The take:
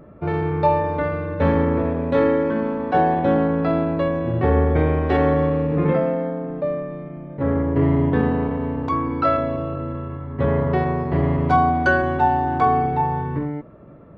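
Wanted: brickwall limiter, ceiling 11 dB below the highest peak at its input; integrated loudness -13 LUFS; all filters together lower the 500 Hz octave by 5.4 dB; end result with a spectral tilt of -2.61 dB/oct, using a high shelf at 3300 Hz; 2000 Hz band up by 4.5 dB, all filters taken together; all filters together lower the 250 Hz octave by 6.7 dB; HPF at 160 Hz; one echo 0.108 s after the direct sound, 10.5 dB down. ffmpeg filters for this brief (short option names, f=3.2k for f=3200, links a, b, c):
-af "highpass=160,equalizer=f=250:t=o:g=-6,equalizer=f=500:t=o:g=-5.5,equalizer=f=2k:t=o:g=5,highshelf=f=3.3k:g=7.5,alimiter=limit=-16.5dB:level=0:latency=1,aecho=1:1:108:0.299,volume=13dB"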